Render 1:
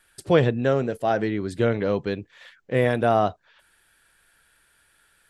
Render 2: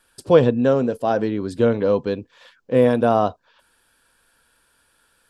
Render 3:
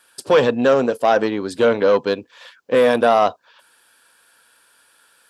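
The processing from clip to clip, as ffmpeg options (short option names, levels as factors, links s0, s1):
-af "equalizer=f=250:t=o:w=0.33:g=9,equalizer=f=500:t=o:w=0.33:g=7,equalizer=f=1000:t=o:w=0.33:g=7,equalizer=f=2000:t=o:w=0.33:g=-8,equalizer=f=5000:t=o:w=0.33:g=4"
-af "apsyclip=4.47,aeval=exprs='1.06*(cos(1*acos(clip(val(0)/1.06,-1,1)))-cos(1*PI/2))+0.0841*(cos(3*acos(clip(val(0)/1.06,-1,1)))-cos(3*PI/2))':c=same,highpass=f=610:p=1,volume=0.668"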